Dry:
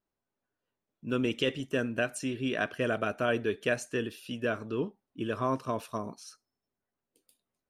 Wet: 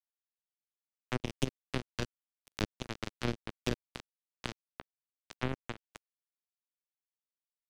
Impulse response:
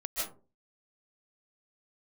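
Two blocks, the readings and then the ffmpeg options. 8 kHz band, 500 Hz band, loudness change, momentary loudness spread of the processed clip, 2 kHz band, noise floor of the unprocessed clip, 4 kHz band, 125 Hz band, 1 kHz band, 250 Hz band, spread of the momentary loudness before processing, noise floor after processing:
−5.5 dB, −12.5 dB, −7.5 dB, 16 LU, −10.5 dB, below −85 dBFS, −4.5 dB, −2.0 dB, −10.0 dB, −8.0 dB, 9 LU, below −85 dBFS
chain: -filter_complex "[0:a]aeval=exprs='val(0)+0.00631*(sin(2*PI*50*n/s)+sin(2*PI*2*50*n/s)/2+sin(2*PI*3*50*n/s)/3+sin(2*PI*4*50*n/s)/4+sin(2*PI*5*50*n/s)/5)':channel_layout=same,acrusher=bits=2:mix=0:aa=0.5,acrossover=split=410[link_01][link_02];[link_02]acompressor=threshold=-52dB:ratio=10[link_03];[link_01][link_03]amix=inputs=2:normalize=0,volume=15dB"

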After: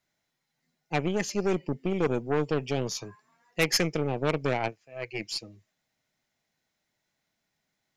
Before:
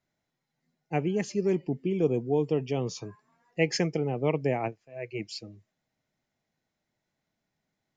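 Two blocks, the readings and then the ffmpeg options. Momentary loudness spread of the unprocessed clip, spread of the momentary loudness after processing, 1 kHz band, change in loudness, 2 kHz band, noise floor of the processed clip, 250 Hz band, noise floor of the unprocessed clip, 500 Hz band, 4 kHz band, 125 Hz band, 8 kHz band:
13 LU, 11 LU, +3.0 dB, 0.0 dB, +5.0 dB, −81 dBFS, −1.0 dB, −84 dBFS, −1.0 dB, +6.5 dB, −1.0 dB, can't be measured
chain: -af "aeval=exprs='0.266*(cos(1*acos(clip(val(0)/0.266,-1,1)))-cos(1*PI/2))+0.0422*(cos(5*acos(clip(val(0)/0.266,-1,1)))-cos(5*PI/2))+0.0211*(cos(7*acos(clip(val(0)/0.266,-1,1)))-cos(7*PI/2))+0.0266*(cos(8*acos(clip(val(0)/0.266,-1,1)))-cos(8*PI/2))':channel_layout=same,tiltshelf=frequency=970:gain=-4.5"

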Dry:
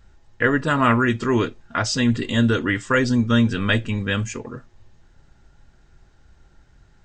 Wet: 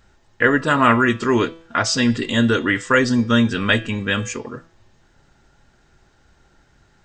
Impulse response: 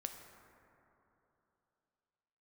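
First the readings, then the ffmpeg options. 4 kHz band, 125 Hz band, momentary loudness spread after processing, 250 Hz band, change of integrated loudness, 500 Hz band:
+4.0 dB, −2.0 dB, 7 LU, +1.5 dB, +2.5 dB, +3.0 dB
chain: -af "lowshelf=frequency=120:gain=-11.5,bandreject=frequency=164.7:width_type=h:width=4,bandreject=frequency=329.4:width_type=h:width=4,bandreject=frequency=494.1:width_type=h:width=4,bandreject=frequency=658.8:width_type=h:width=4,bandreject=frequency=823.5:width_type=h:width=4,bandreject=frequency=988.2:width_type=h:width=4,bandreject=frequency=1152.9:width_type=h:width=4,bandreject=frequency=1317.6:width_type=h:width=4,bandreject=frequency=1482.3:width_type=h:width=4,bandreject=frequency=1647:width_type=h:width=4,bandreject=frequency=1811.7:width_type=h:width=4,bandreject=frequency=1976.4:width_type=h:width=4,bandreject=frequency=2141.1:width_type=h:width=4,bandreject=frequency=2305.8:width_type=h:width=4,bandreject=frequency=2470.5:width_type=h:width=4,bandreject=frequency=2635.2:width_type=h:width=4,bandreject=frequency=2799.9:width_type=h:width=4,bandreject=frequency=2964.6:width_type=h:width=4,bandreject=frequency=3129.3:width_type=h:width=4,bandreject=frequency=3294:width_type=h:width=4,bandreject=frequency=3458.7:width_type=h:width=4,bandreject=frequency=3623.4:width_type=h:width=4,bandreject=frequency=3788.1:width_type=h:width=4,bandreject=frequency=3952.8:width_type=h:width=4,bandreject=frequency=4117.5:width_type=h:width=4,bandreject=frequency=4282.2:width_type=h:width=4,bandreject=frequency=4446.9:width_type=h:width=4,bandreject=frequency=4611.6:width_type=h:width=4,bandreject=frequency=4776.3:width_type=h:width=4,bandreject=frequency=4941:width_type=h:width=4,bandreject=frequency=5105.7:width_type=h:width=4,bandreject=frequency=5270.4:width_type=h:width=4,bandreject=frequency=5435.1:width_type=h:width=4,bandreject=frequency=5599.8:width_type=h:width=4,bandreject=frequency=5764.5:width_type=h:width=4,volume=4dB"

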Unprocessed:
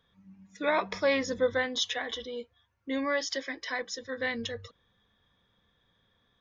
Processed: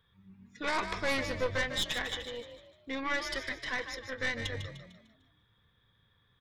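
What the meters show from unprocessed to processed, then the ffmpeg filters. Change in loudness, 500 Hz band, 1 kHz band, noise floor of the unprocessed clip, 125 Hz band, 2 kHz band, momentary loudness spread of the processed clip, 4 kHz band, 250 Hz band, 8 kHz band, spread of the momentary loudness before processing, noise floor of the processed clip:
−3.0 dB, −7.0 dB, −2.5 dB, −72 dBFS, +7.0 dB, −0.5 dB, 12 LU, −1.5 dB, −5.5 dB, can't be measured, 11 LU, −71 dBFS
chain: -filter_complex "[0:a]equalizer=frequency=100:width_type=o:width=0.67:gain=7,equalizer=frequency=250:width_type=o:width=0.67:gain=-9,equalizer=frequency=630:width_type=o:width=0.67:gain=-9,equalizer=frequency=6300:width_type=o:width=0.67:gain=-11,tremolo=f=200:d=0.182,aeval=exprs='0.119*(cos(1*acos(clip(val(0)/0.119,-1,1)))-cos(1*PI/2))+0.015*(cos(5*acos(clip(val(0)/0.119,-1,1)))-cos(5*PI/2))+0.0237*(cos(6*acos(clip(val(0)/0.119,-1,1)))-cos(6*PI/2))':channel_layout=same,asplit=2[link_01][link_02];[link_02]asplit=5[link_03][link_04][link_05][link_06][link_07];[link_03]adelay=150,afreqshift=41,volume=-9dB[link_08];[link_04]adelay=300,afreqshift=82,volume=-16.7dB[link_09];[link_05]adelay=450,afreqshift=123,volume=-24.5dB[link_10];[link_06]adelay=600,afreqshift=164,volume=-32.2dB[link_11];[link_07]adelay=750,afreqshift=205,volume=-40dB[link_12];[link_08][link_09][link_10][link_11][link_12]amix=inputs=5:normalize=0[link_13];[link_01][link_13]amix=inputs=2:normalize=0,volume=-2.5dB"

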